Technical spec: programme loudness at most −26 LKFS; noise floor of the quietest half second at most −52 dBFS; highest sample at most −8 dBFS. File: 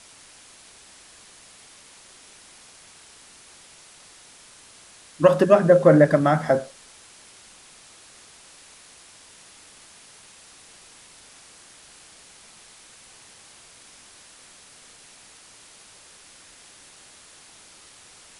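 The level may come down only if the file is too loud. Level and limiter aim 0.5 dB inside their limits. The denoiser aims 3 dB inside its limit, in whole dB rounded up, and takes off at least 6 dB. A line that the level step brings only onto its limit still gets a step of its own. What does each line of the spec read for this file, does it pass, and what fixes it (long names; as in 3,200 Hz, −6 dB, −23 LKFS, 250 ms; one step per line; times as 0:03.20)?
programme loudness −17.5 LKFS: out of spec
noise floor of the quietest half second −50 dBFS: out of spec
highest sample −3.0 dBFS: out of spec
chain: level −9 dB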